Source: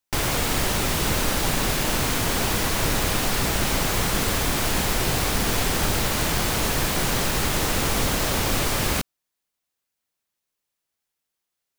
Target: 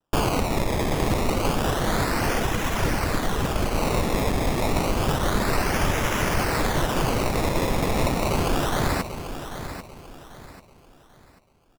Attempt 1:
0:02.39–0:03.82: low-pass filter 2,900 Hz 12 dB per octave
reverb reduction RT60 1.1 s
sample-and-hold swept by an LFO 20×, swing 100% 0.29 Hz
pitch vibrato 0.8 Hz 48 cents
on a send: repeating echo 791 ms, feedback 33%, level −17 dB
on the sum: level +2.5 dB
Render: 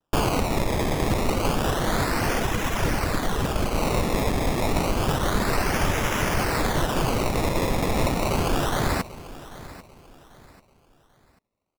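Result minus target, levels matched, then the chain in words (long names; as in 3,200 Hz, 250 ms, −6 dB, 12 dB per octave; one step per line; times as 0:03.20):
echo-to-direct −6.5 dB
0:02.39–0:03.82: low-pass filter 2,900 Hz 12 dB per octave
reverb reduction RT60 1.1 s
sample-and-hold swept by an LFO 20×, swing 100% 0.29 Hz
pitch vibrato 0.8 Hz 48 cents
on a send: repeating echo 791 ms, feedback 33%, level −10.5 dB
on the sum: level +2.5 dB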